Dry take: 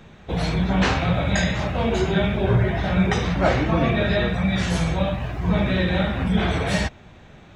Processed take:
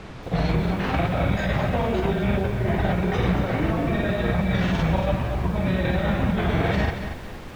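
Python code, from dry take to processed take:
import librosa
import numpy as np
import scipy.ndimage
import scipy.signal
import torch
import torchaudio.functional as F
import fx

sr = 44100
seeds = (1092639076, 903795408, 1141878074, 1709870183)

y = fx.low_shelf(x, sr, hz=260.0, db=-2.5)
y = fx.over_compress(y, sr, threshold_db=-24.0, ratio=-1.0)
y = fx.granulator(y, sr, seeds[0], grain_ms=100.0, per_s=20.0, spray_ms=35.0, spread_st=0)
y = fx.dmg_noise_colour(y, sr, seeds[1], colour='pink', level_db=-40.0)
y = scipy.signal.sosfilt(scipy.signal.butter(2, 3000.0, 'lowpass', fs=sr, output='sos'), y)
y = fx.peak_eq(y, sr, hz=2300.0, db=-3.5, octaves=2.9)
y = fx.echo_crushed(y, sr, ms=230, feedback_pct=35, bits=8, wet_db=-8.5)
y = F.gain(torch.from_numpy(y), 3.0).numpy()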